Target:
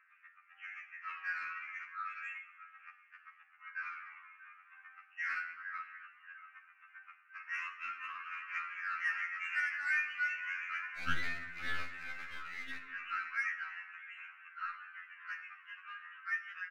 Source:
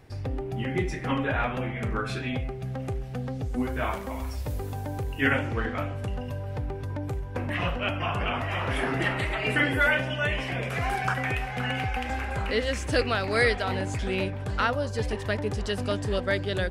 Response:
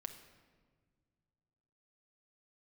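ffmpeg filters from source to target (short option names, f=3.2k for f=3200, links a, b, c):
-filter_complex "[0:a]alimiter=limit=-21dB:level=0:latency=1:release=19,aemphasis=mode=reproduction:type=riaa,aecho=1:1:635:0.178,aphaser=in_gain=1:out_gain=1:delay=2.9:decay=0.41:speed=0.35:type=triangular,acompressor=threshold=-17dB:ratio=5,asuperpass=centerf=1800:order=12:qfactor=1.2,aeval=exprs='0.0841*(cos(1*acos(clip(val(0)/0.0841,-1,1)))-cos(1*PI/2))+0.00211*(cos(7*acos(clip(val(0)/0.0841,-1,1)))-cos(7*PI/2))':c=same,asettb=1/sr,asplit=3[a][b][c];[a]atrim=end=10.944[d];[b]atrim=start=10.94:end=12.8,asetpts=PTS-STARTPTS,afade=t=in:d=0.004:c=qsin,afade=t=out:st=1.856:d=0.004:c=qsin,aeval=exprs='clip(val(0),-1,0.00668)':c=same[e];[c]atrim=start=12.796[f];[d][e]acrossfade=d=0.004:c1=hsin:c2=qsin[g];[g][f]acrossfade=d=0.004:c1=qsin:c2=hsin[h];[1:a]atrim=start_sample=2205,asetrate=66150,aresample=44100[i];[h][i]afir=irnorm=-1:irlink=0,afftfilt=real='re*2*eq(mod(b,4),0)':imag='im*2*eq(mod(b,4),0)':win_size=2048:overlap=0.75,volume=10dB"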